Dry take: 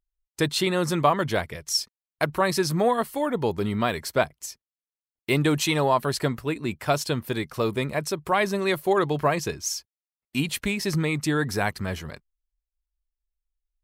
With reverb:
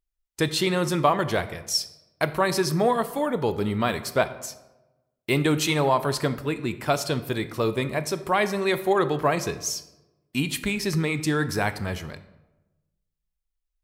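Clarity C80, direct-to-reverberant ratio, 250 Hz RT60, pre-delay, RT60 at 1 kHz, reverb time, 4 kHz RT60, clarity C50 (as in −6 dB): 16.0 dB, 11.5 dB, 1.2 s, 17 ms, 1.0 s, 1.1 s, 0.60 s, 14.0 dB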